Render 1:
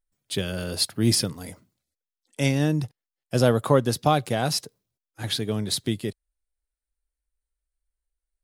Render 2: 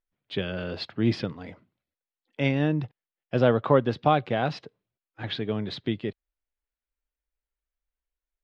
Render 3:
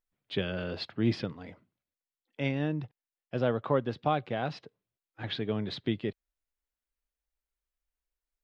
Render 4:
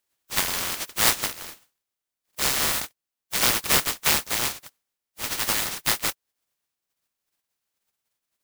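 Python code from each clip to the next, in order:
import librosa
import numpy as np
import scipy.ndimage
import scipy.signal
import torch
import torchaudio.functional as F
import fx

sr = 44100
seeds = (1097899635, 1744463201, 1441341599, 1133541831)

y1 = scipy.signal.sosfilt(scipy.signal.butter(4, 3200.0, 'lowpass', fs=sr, output='sos'), x)
y1 = fx.low_shelf(y1, sr, hz=120.0, db=-7.5)
y2 = fx.rider(y1, sr, range_db=5, speed_s=2.0)
y2 = F.gain(torch.from_numpy(y2), -5.5).numpy()
y3 = fx.spec_flatten(y2, sr, power=0.11)
y3 = y3 * np.sign(np.sin(2.0 * np.pi * 1600.0 * np.arange(len(y3)) / sr))
y3 = F.gain(torch.from_numpy(y3), 7.0).numpy()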